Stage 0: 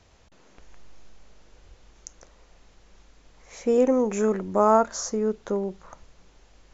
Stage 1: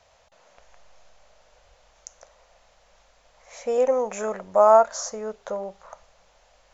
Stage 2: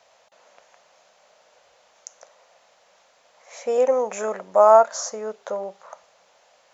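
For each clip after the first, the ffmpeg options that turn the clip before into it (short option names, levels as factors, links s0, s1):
-af "lowshelf=f=450:t=q:w=3:g=-9.5,bandreject=f=401.7:t=h:w=4,bandreject=f=803.4:t=h:w=4,bandreject=f=1205.1:t=h:w=4,bandreject=f=1606.8:t=h:w=4,bandreject=f=2008.5:t=h:w=4,bandreject=f=2410.2:t=h:w=4,bandreject=f=2811.9:t=h:w=4,bandreject=f=3213.6:t=h:w=4,bandreject=f=3615.3:t=h:w=4,bandreject=f=4017:t=h:w=4,bandreject=f=4418.7:t=h:w=4,bandreject=f=4820.4:t=h:w=4,bandreject=f=5222.1:t=h:w=4,bandreject=f=5623.8:t=h:w=4,bandreject=f=6025.5:t=h:w=4,bandreject=f=6427.2:t=h:w=4,bandreject=f=6828.9:t=h:w=4,bandreject=f=7230.6:t=h:w=4,bandreject=f=7632.3:t=h:w=4,bandreject=f=8034:t=h:w=4,bandreject=f=8435.7:t=h:w=4,bandreject=f=8837.4:t=h:w=4,bandreject=f=9239.1:t=h:w=4,bandreject=f=9640.8:t=h:w=4,bandreject=f=10042.5:t=h:w=4,bandreject=f=10444.2:t=h:w=4,bandreject=f=10845.9:t=h:w=4,bandreject=f=11247.6:t=h:w=4,bandreject=f=11649.3:t=h:w=4,bandreject=f=12051:t=h:w=4,bandreject=f=12452.7:t=h:w=4,bandreject=f=12854.4:t=h:w=4,bandreject=f=13256.1:t=h:w=4,bandreject=f=13657.8:t=h:w=4,bandreject=f=14059.5:t=h:w=4"
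-af "highpass=240,volume=1.26"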